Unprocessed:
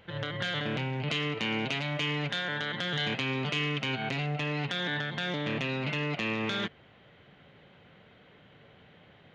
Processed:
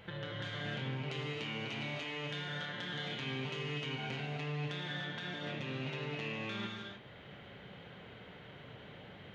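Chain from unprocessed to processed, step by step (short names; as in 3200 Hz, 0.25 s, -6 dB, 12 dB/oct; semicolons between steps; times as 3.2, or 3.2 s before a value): compressor 5:1, threshold -44 dBFS, peak gain reduction 15.5 dB; non-linear reverb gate 0.34 s flat, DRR -1 dB; gain +1 dB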